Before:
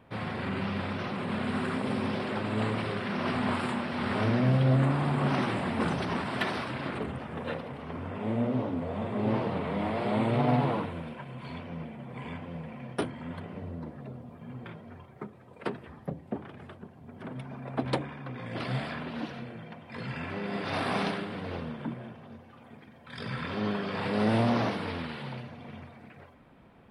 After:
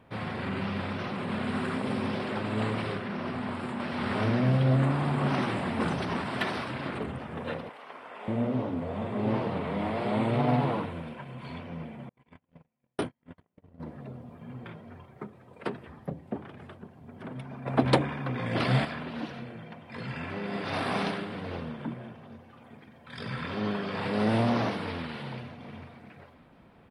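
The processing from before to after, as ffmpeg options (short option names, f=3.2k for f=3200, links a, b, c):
-filter_complex "[0:a]asettb=1/sr,asplit=3[a][b][c];[a]atrim=end=2.964[d];[b]atrim=start=2.96:end=3.8,asetpts=PTS-STARTPTS,afade=t=in:d=0.004:c=qsin,afade=t=out:st=0.836:d=0.004:c=qsin,acrossover=split=670|2500[e][f][g];[e]acompressor=threshold=-32dB:ratio=4[h];[f]acompressor=threshold=-40dB:ratio=4[i];[g]acompressor=threshold=-53dB:ratio=4[j];[h][i][j]amix=inputs=3:normalize=0[k];[c]atrim=start=3.796[l];[d][k]acrossfade=d=0.004:c1=hsin:c2=qsin[m];[m][l]acrossfade=d=0.004:c1=qsin:c2=hsin,asettb=1/sr,asplit=3[n][o][p];[n]atrim=end=7.694[q];[o]atrim=start=7.69:end=8.28,asetpts=PTS-STARTPTS,afade=t=in:d=0.004:c=qsin,afade=t=out:st=0.586:d=0.004:c=qsin,highpass=700[r];[p]atrim=start=8.276[s];[q][r]acrossfade=d=0.004:c1=hsin:c2=qsin[t];[t][s]acrossfade=d=0.004:c1=qsin:c2=hsin,asettb=1/sr,asplit=3[u][v][w];[u]atrim=end=12.094[x];[v]atrim=start=12.09:end=13.8,asetpts=PTS-STARTPTS,afade=t=in:d=0.004:c=qsin,afade=t=out:st=1.706:d=0.004:c=qsin,agate=range=-43dB:threshold=-36dB:ratio=16:release=100:detection=peak[y];[w]atrim=start=13.796[z];[x][y]acrossfade=d=0.004:c1=hsin:c2=qsin[aa];[aa][z]acrossfade=d=0.004:c1=qsin:c2=hsin,asettb=1/sr,asplit=3[ab][ac][ad];[ab]atrim=end=17.664[ae];[ac]atrim=start=17.66:end=18.85,asetpts=PTS-STARTPTS,afade=t=in:d=0.004:c=qsin,afade=t=out:st=1.186:d=0.004:c=qsin,acontrast=87[af];[ad]atrim=start=18.846[ag];[ae][af]acrossfade=d=0.004:c1=hsin:c2=qsin[ah];[ah][ag]acrossfade=d=0.004:c1=qsin:c2=hsin,asplit=2[ai][aj];[aj]afade=t=in:st=24.68:d=0.01,afade=t=out:st=25.08:d=0.01,aecho=0:1:460|920|1380|1840:0.188365|0.0847642|0.0381439|0.0171648[ak];[ai][ak]amix=inputs=2:normalize=0"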